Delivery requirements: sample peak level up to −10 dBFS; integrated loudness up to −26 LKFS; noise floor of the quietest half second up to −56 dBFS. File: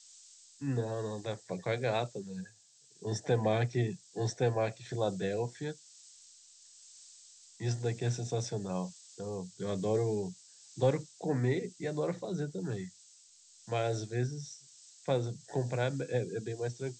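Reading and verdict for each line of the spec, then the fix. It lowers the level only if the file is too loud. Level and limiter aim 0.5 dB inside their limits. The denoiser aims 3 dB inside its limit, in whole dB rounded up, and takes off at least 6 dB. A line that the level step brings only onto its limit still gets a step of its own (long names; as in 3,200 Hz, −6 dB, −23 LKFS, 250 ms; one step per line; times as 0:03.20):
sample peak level −16.0 dBFS: in spec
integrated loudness −35.0 LKFS: in spec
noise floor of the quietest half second −62 dBFS: in spec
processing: no processing needed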